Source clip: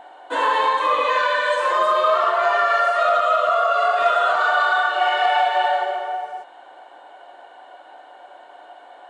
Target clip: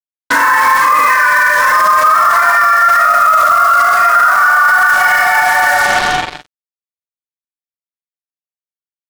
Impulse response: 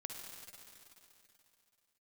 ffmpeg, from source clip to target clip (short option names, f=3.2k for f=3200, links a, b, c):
-filter_complex "[0:a]firequalizer=gain_entry='entry(260,0);entry(400,-19);entry(1200,3);entry(2100,5);entry(3500,-29);entry(5200,12);entry(9800,-27)':delay=0.05:min_phase=1,acrusher=bits=4:mix=0:aa=0.5,asplit=2[a][b];[b]adelay=42,volume=-6dB[c];[a][c]amix=inputs=2:normalize=0,alimiter=level_in=20dB:limit=-1dB:release=50:level=0:latency=1,volume=-1dB"